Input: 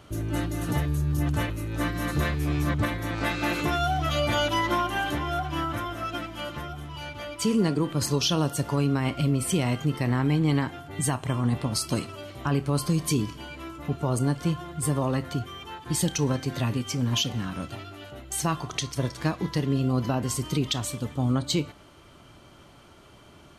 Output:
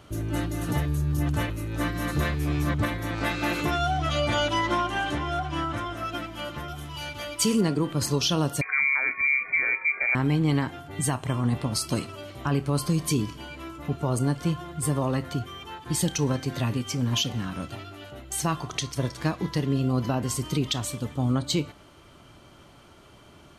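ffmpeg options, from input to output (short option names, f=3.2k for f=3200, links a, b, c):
-filter_complex "[0:a]asettb=1/sr,asplit=3[a][b][c];[a]atrim=end=3.714[d];[b]atrim=start=3.71:end=5.97,asetpts=PTS-STARTPTS,afade=t=in:d=0.004:c=qsin,afade=t=out:st=2.256:d=0.004:c=qsin,lowpass=f=9.5k:w=0.5412,lowpass=f=9.5k:w=1.3066[e];[c]atrim=start=5.966[f];[d][e]acrossfade=d=0.004:c1=hsin:c2=qsin[g];[g][f]acrossfade=d=0.004:c1=qsin:c2=hsin,asettb=1/sr,asplit=3[h][i][j];[h]atrim=end=6.684[k];[i]atrim=start=6.68:end=7.61,asetpts=PTS-STARTPTS,afade=t=in:d=0.004:c=qsin,afade=t=out:st=0.926:d=0.004:c=qsin,highshelf=f=3.2k:g=9[l];[j]atrim=start=7.606[m];[k][l]acrossfade=d=0.004:c1=hsin:c2=qsin[n];[n][m]acrossfade=d=0.004:c1=qsin:c2=hsin,asettb=1/sr,asplit=3[o][p][q];[o]atrim=end=8.614[r];[p]atrim=start=8.61:end=10.15,asetpts=PTS-STARTPTS,afade=t=in:d=0.004:c=qsin,afade=t=out:st=1.536:d=0.004:c=qsin,lowpass=f=2.1k:t=q:w=0.5098,lowpass=f=2.1k:t=q:w=0.6013,lowpass=f=2.1k:t=q:w=0.9,lowpass=f=2.1k:t=q:w=2.563,afreqshift=-2500[s];[q]atrim=start=10.146[t];[r][s]acrossfade=d=0.004:c1=hsin:c2=qsin[u];[u][t]acrossfade=d=0.004:c1=qsin:c2=hsin"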